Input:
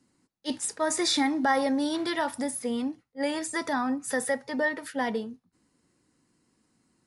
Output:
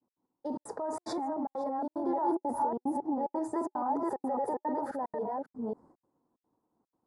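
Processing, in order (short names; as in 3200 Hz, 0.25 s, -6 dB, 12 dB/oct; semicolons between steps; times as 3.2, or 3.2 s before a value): reverse delay 0.273 s, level -1.5 dB; expander -56 dBFS; EQ curve 160 Hz 0 dB, 900 Hz +14 dB, 2800 Hz -29 dB, 4600 Hz -20 dB; limiter -29.5 dBFS, peak gain reduction 27 dB; step gate "x.xxxxx.xxx" 184 bpm -60 dB; 2.06–4.87 small resonant body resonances 370/840 Hz, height 10 dB, ringing for 45 ms; gain +2 dB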